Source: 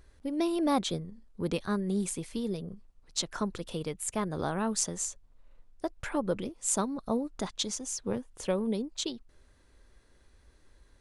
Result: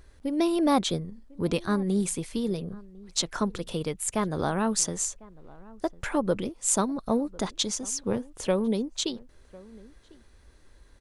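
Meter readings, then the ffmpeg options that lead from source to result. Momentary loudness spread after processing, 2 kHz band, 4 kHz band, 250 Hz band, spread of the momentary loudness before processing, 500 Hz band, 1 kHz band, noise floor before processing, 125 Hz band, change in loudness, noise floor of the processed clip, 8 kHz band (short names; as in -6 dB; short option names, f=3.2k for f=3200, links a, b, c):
9 LU, +4.5 dB, +4.5 dB, +4.5 dB, 9 LU, +4.5 dB, +4.5 dB, -62 dBFS, +4.5 dB, +4.5 dB, -56 dBFS, +4.5 dB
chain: -filter_complex "[0:a]asplit=2[a][b];[b]adelay=1050,volume=-22dB,highshelf=f=4k:g=-23.6[c];[a][c]amix=inputs=2:normalize=0,volume=4.5dB"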